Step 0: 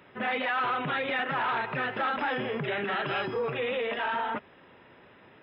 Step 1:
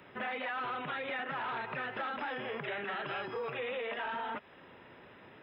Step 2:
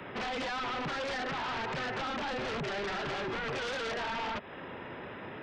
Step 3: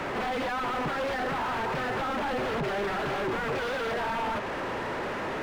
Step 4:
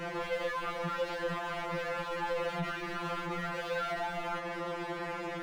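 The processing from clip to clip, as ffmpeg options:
-filter_complex "[0:a]acrossover=split=510|2500[s0][s1][s2];[s0]acompressor=threshold=0.00447:ratio=4[s3];[s1]acompressor=threshold=0.0126:ratio=4[s4];[s2]acompressor=threshold=0.00282:ratio=4[s5];[s3][s4][s5]amix=inputs=3:normalize=0"
-filter_complex "[0:a]highshelf=f=4600:g=-10.5,acrossover=split=300|660[s0][s1][s2];[s2]alimiter=level_in=4.47:limit=0.0631:level=0:latency=1:release=188,volume=0.224[s3];[s0][s1][s3]amix=inputs=3:normalize=0,aeval=exprs='0.0376*sin(PI/2*3.98*val(0)/0.0376)':c=same,volume=0.668"
-filter_complex "[0:a]asplit=2[s0][s1];[s1]highpass=f=720:p=1,volume=39.8,asoftclip=type=tanh:threshold=0.0266[s2];[s0][s2]amix=inputs=2:normalize=0,lowpass=f=1000:p=1,volume=0.501,volume=2.37"
-af "afftfilt=real='re*2.83*eq(mod(b,8),0)':imag='im*2.83*eq(mod(b,8),0)':win_size=2048:overlap=0.75,volume=0.75"

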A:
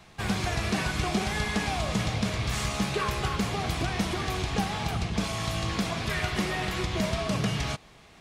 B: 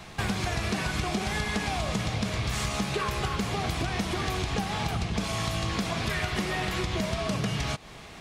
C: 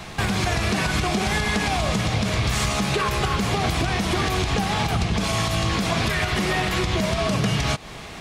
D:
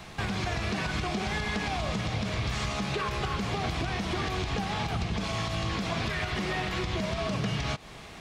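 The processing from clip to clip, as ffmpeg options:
-af "acompressor=threshold=0.0158:ratio=4,volume=2.66"
-af "alimiter=limit=0.0944:level=0:latency=1:release=52,volume=2.51"
-filter_complex "[0:a]acrossover=split=6500[s0][s1];[s1]acompressor=threshold=0.00282:ratio=4:attack=1:release=60[s2];[s0][s2]amix=inputs=2:normalize=0,volume=0.398"

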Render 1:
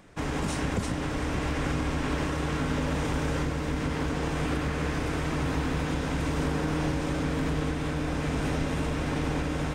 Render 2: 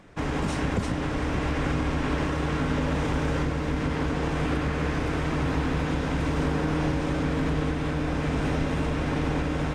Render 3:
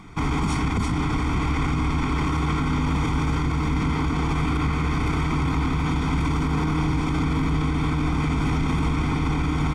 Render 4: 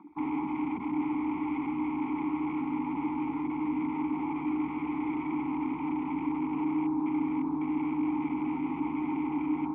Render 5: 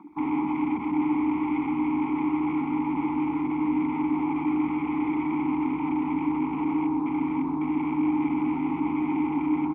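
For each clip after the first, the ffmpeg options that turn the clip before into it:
-af "highshelf=f=6900:g=-11,volume=1.33"
-af "aecho=1:1:0.9:0.88,alimiter=limit=0.0944:level=0:latency=1:release=26,volume=1.78"
-filter_complex "[0:a]asplit=2[s0][s1];[s1]highpass=f=720:p=1,volume=10,asoftclip=type=tanh:threshold=0.178[s2];[s0][s2]amix=inputs=2:normalize=0,lowpass=f=1200:p=1,volume=0.501,afwtdn=0.0398,asplit=3[s3][s4][s5];[s3]bandpass=f=300:t=q:w=8,volume=1[s6];[s4]bandpass=f=870:t=q:w=8,volume=0.501[s7];[s5]bandpass=f=2240:t=q:w=8,volume=0.355[s8];[s6][s7][s8]amix=inputs=3:normalize=0"
-af "aecho=1:1:125:0.335,volume=1.68"

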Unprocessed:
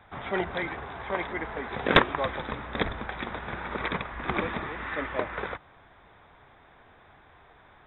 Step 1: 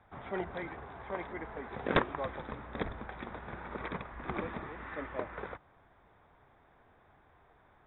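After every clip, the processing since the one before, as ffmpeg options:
-af "highshelf=f=2300:g=-11.5,volume=0.473"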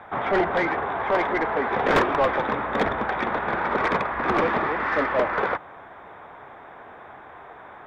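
-filter_complex "[0:a]asplit=2[s0][s1];[s1]highpass=f=720:p=1,volume=25.1,asoftclip=type=tanh:threshold=0.237[s2];[s0][s2]amix=inputs=2:normalize=0,lowpass=f=1400:p=1,volume=0.501,volume=1.5"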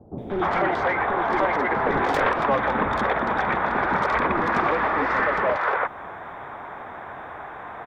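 -filter_complex "[0:a]acompressor=threshold=0.0398:ratio=2.5,acrossover=split=420|3200[s0][s1][s2];[s2]adelay=180[s3];[s1]adelay=300[s4];[s0][s4][s3]amix=inputs=3:normalize=0,volume=2.37"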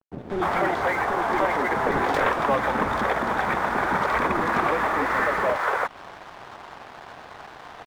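-af "aeval=exprs='sgn(val(0))*max(abs(val(0))-0.00944,0)':c=same"

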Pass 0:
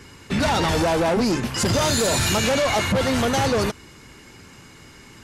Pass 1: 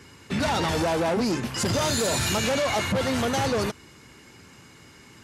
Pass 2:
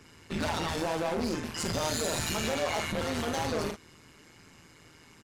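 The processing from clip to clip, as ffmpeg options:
-af "highpass=66,volume=0.631"
-af "volume=13.3,asoftclip=hard,volume=0.075,aecho=1:1:41|51:0.422|0.251,tremolo=f=160:d=0.75,volume=0.708"

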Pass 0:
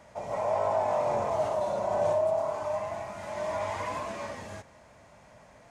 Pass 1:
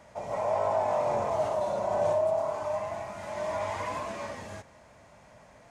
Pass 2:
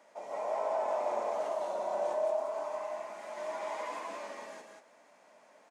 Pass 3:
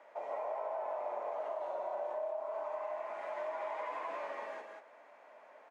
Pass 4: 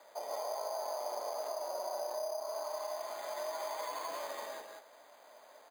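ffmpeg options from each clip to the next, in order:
-af anull
-af "highpass=f=270:w=0.5412,highpass=f=270:w=1.3066,aecho=1:1:184:0.631,volume=0.473"
-filter_complex "[0:a]acrossover=split=340 2900:gain=0.126 1 0.112[s0][s1][s2];[s0][s1][s2]amix=inputs=3:normalize=0,acompressor=threshold=0.01:ratio=6,volume=1.58"
-af "acrusher=samples=8:mix=1:aa=0.000001"

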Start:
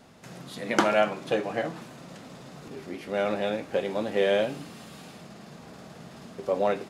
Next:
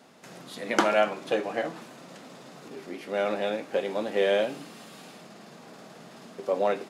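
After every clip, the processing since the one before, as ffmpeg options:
-af "highpass=220"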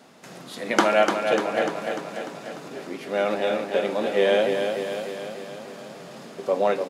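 -af "aecho=1:1:297|594|891|1188|1485|1782|2079|2376:0.501|0.301|0.18|0.108|0.065|0.039|0.0234|0.014,volume=1.5"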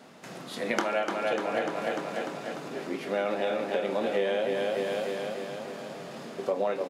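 -filter_complex "[0:a]bass=f=250:g=0,treble=f=4000:g=-3,acompressor=threshold=0.0562:ratio=6,asplit=2[s0][s1];[s1]adelay=26,volume=0.266[s2];[s0][s2]amix=inputs=2:normalize=0"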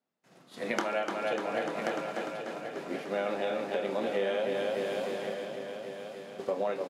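-filter_complex "[0:a]agate=range=0.0224:threshold=0.0251:ratio=3:detection=peak,asplit=2[s0][s1];[s1]aecho=0:1:1082:0.376[s2];[s0][s2]amix=inputs=2:normalize=0,volume=0.708"

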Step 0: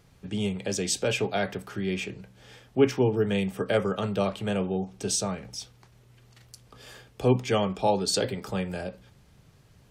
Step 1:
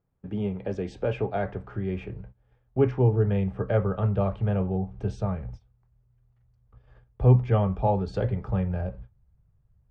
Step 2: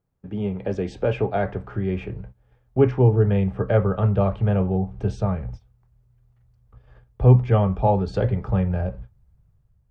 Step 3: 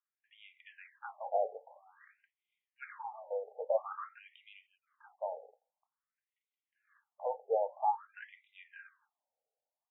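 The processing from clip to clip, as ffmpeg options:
-af "lowpass=1200,agate=range=0.112:threshold=0.00355:ratio=16:detection=peak,asubboost=boost=11:cutoff=83,volume=1.12"
-af "dynaudnorm=f=100:g=9:m=1.78"
-af "afftfilt=real='re*between(b*sr/1024,600*pow(2800/600,0.5+0.5*sin(2*PI*0.5*pts/sr))/1.41,600*pow(2800/600,0.5+0.5*sin(2*PI*0.5*pts/sr))*1.41)':imag='im*between(b*sr/1024,600*pow(2800/600,0.5+0.5*sin(2*PI*0.5*pts/sr))/1.41,600*pow(2800/600,0.5+0.5*sin(2*PI*0.5*pts/sr))*1.41)':win_size=1024:overlap=0.75,volume=0.473"

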